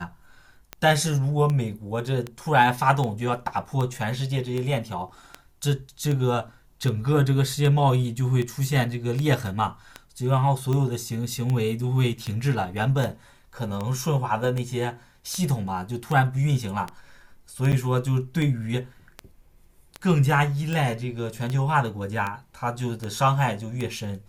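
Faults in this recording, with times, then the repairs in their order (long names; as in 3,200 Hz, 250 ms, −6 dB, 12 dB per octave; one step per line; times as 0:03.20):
scratch tick 78 rpm −16 dBFS
0:17.72–0:17.73: drop-out 8.3 ms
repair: click removal
repair the gap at 0:17.72, 8.3 ms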